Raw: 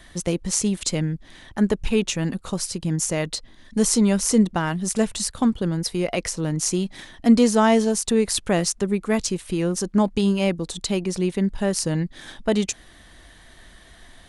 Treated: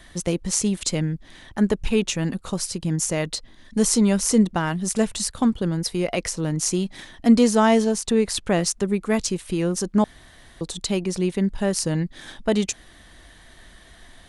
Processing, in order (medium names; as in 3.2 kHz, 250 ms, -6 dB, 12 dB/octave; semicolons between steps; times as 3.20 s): 7.84–8.66 s: treble shelf 8.5 kHz -8 dB; 10.04–10.61 s: room tone